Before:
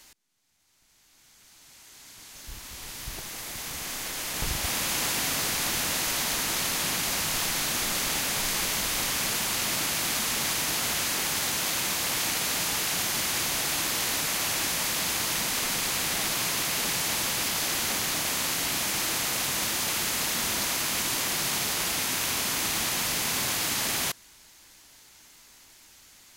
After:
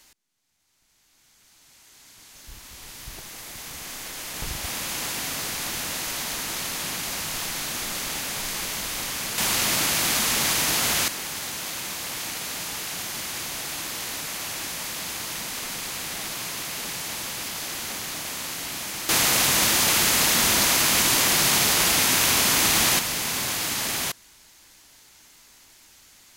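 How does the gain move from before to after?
-2 dB
from 9.38 s +5 dB
from 11.08 s -4 dB
from 19.09 s +8 dB
from 22.99 s +1 dB

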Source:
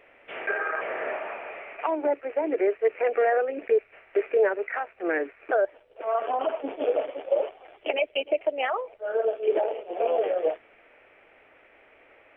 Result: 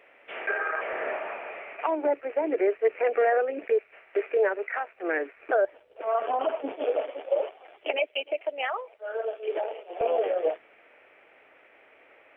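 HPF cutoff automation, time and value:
HPF 6 dB/oct
330 Hz
from 0.93 s 130 Hz
from 3.64 s 360 Hz
from 5.36 s 110 Hz
from 6.72 s 380 Hz
from 8.07 s 860 Hz
from 10.01 s 240 Hz

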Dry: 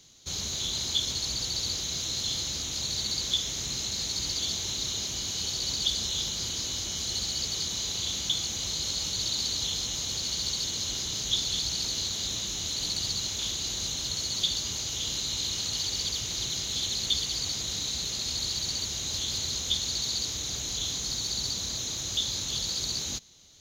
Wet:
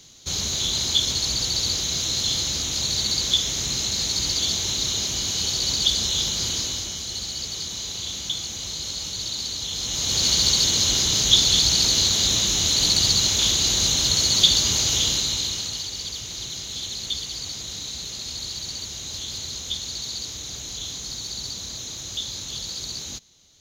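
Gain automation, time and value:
6.55 s +7 dB
7.03 s +0.5 dB
9.67 s +0.5 dB
10.24 s +11.5 dB
14.96 s +11.5 dB
15.89 s -1 dB

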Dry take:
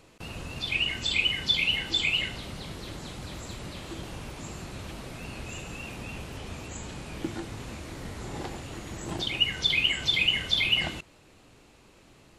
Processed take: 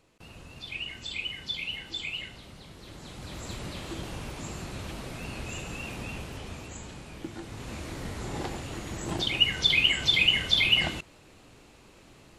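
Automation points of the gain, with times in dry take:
2.73 s -9 dB
3.51 s +1.5 dB
6.04 s +1.5 dB
7.3 s -6 dB
7.79 s +2 dB

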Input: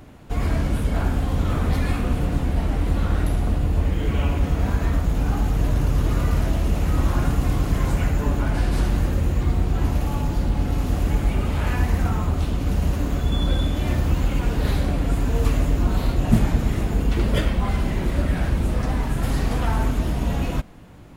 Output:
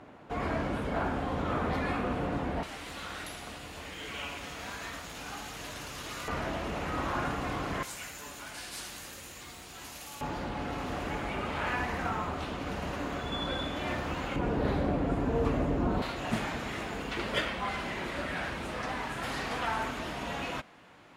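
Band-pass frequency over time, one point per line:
band-pass, Q 0.54
920 Hz
from 2.63 s 4500 Hz
from 6.28 s 1400 Hz
from 7.83 s 7900 Hz
from 10.21 s 1400 Hz
from 14.36 s 560 Hz
from 16.02 s 2000 Hz

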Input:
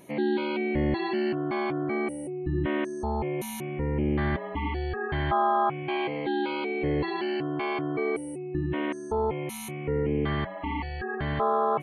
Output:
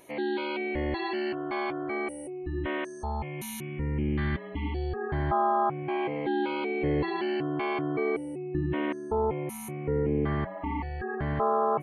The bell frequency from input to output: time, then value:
bell -13 dB 1.3 oct
2.7 s 170 Hz
3.57 s 640 Hz
4.32 s 640 Hz
5.12 s 3000 Hz
5.71 s 3000 Hz
6.79 s 11000 Hz
8.74 s 11000 Hz
9.48 s 3700 Hz

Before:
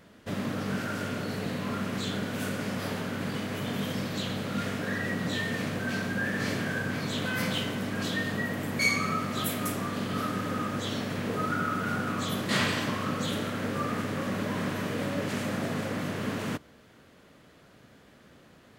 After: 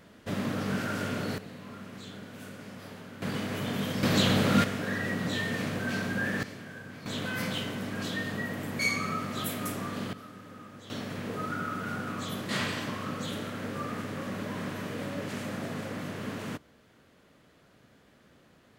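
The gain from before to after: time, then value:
+0.5 dB
from 1.38 s -12 dB
from 3.22 s 0 dB
from 4.03 s +8.5 dB
from 4.64 s -0.5 dB
from 6.43 s -13 dB
from 7.06 s -3 dB
from 10.13 s -16 dB
from 10.9 s -4.5 dB

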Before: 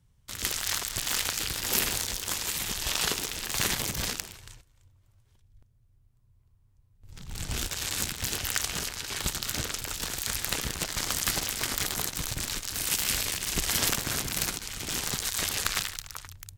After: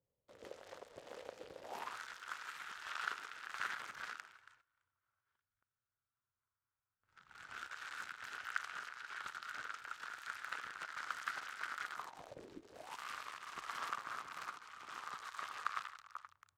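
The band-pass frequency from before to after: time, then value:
band-pass, Q 5
1.59 s 520 Hz
1.99 s 1400 Hz
11.93 s 1400 Hz
12.58 s 310 Hz
13 s 1200 Hz

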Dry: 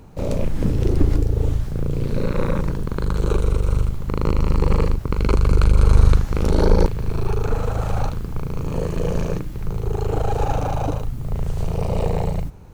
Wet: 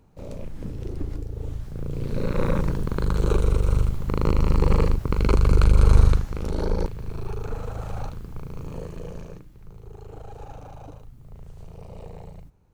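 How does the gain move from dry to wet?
1.3 s -13.5 dB
2.48 s -1.5 dB
5.98 s -1.5 dB
6.38 s -9.5 dB
8.65 s -9.5 dB
9.54 s -19 dB

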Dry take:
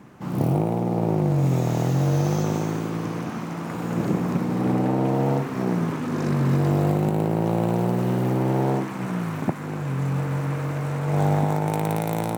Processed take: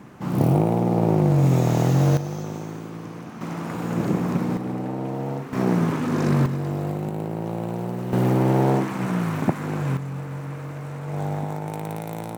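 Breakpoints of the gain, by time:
+3 dB
from 2.17 s -7.5 dB
from 3.41 s +0.5 dB
from 4.57 s -6.5 dB
from 5.53 s +3 dB
from 6.46 s -6 dB
from 8.13 s +3 dB
from 9.97 s -6.5 dB

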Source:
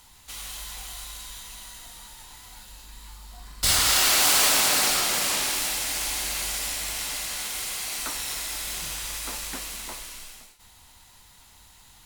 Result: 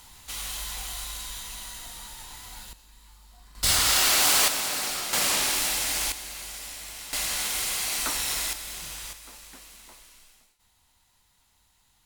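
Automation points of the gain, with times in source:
+3 dB
from 2.73 s -9 dB
from 3.55 s -1 dB
from 4.48 s -7.5 dB
from 5.13 s +1 dB
from 6.12 s -9 dB
from 7.13 s +3 dB
from 8.53 s -5 dB
from 9.13 s -13 dB

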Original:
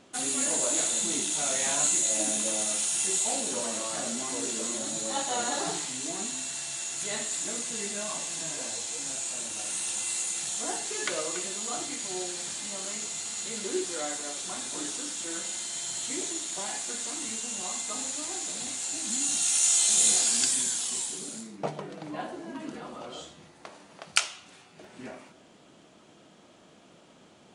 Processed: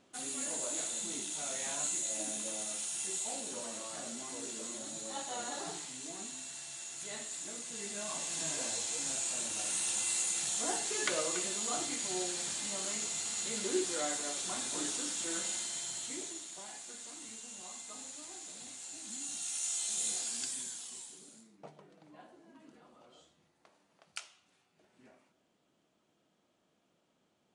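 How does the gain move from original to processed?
7.62 s -10 dB
8.46 s -2 dB
15.52 s -2 dB
16.62 s -13 dB
20.61 s -13 dB
21.7 s -19.5 dB

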